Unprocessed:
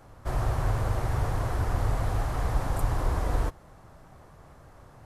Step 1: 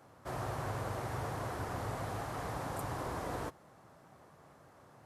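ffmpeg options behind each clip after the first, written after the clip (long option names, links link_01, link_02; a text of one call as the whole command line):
ffmpeg -i in.wav -af "highpass=150,volume=-5dB" out.wav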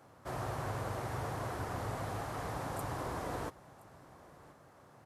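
ffmpeg -i in.wav -af "aecho=1:1:1022:0.0891" out.wav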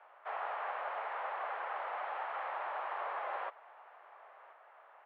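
ffmpeg -i in.wav -af "highpass=frequency=540:width_type=q:width=0.5412,highpass=frequency=540:width_type=q:width=1.307,lowpass=frequency=2900:width_type=q:width=0.5176,lowpass=frequency=2900:width_type=q:width=0.7071,lowpass=frequency=2900:width_type=q:width=1.932,afreqshift=71,volume=3dB" out.wav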